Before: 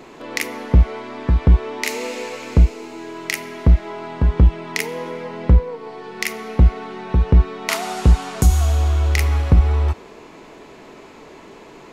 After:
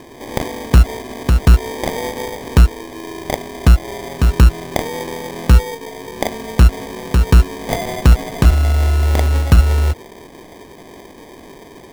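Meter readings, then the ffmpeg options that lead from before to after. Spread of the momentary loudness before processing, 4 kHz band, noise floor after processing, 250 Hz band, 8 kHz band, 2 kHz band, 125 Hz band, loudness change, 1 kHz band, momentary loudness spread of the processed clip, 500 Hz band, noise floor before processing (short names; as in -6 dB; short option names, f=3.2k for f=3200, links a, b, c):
13 LU, +3.5 dB, -40 dBFS, +3.5 dB, +1.0 dB, +1.0 dB, +3.0 dB, +3.0 dB, +4.0 dB, 14 LU, +4.0 dB, -42 dBFS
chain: -af "acrusher=samples=32:mix=1:aa=0.000001,volume=3dB"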